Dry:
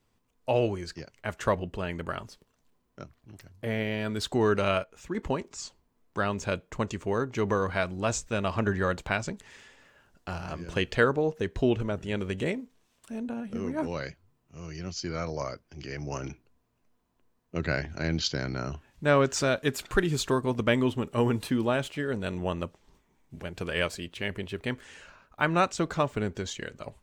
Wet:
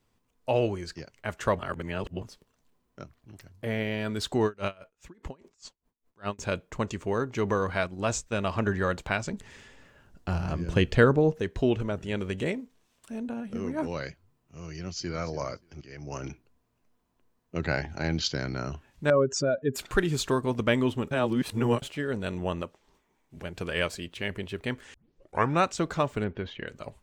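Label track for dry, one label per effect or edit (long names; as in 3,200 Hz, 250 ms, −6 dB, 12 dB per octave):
1.590000	2.220000	reverse
4.450000	6.390000	tremolo with a sine in dB 4.9 Hz, depth 31 dB
7.870000	8.420000	noise gate −37 dBFS, range −7 dB
9.330000	11.390000	low-shelf EQ 330 Hz +10 dB
14.710000	15.270000	delay throw 290 ms, feedback 15%, level −15.5 dB
15.810000	16.280000	fade in, from −13.5 dB
17.620000	18.130000	parametric band 820 Hz +10.5 dB 0.24 octaves
19.100000	19.760000	expanding power law on the bin magnitudes exponent 2.1
21.110000	21.820000	reverse
22.620000	23.360000	bass and treble bass −8 dB, treble −2 dB
24.940000	24.940000	tape start 0.65 s
26.240000	26.680000	low-pass filter 3,200 Hz 24 dB per octave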